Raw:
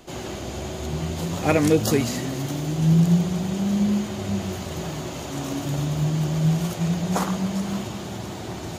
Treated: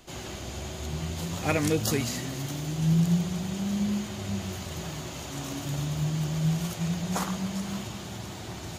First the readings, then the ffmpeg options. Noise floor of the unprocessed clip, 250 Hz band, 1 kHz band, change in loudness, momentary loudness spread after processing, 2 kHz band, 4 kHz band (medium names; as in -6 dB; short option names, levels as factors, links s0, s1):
-34 dBFS, -6.5 dB, -6.0 dB, -6.0 dB, 12 LU, -3.5 dB, -2.5 dB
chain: -af "equalizer=f=400:w=0.42:g=-6.5,volume=0.794"